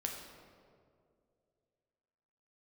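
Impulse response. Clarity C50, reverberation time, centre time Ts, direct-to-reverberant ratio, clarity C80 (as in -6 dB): 3.5 dB, 2.3 s, 59 ms, 0.5 dB, 5.0 dB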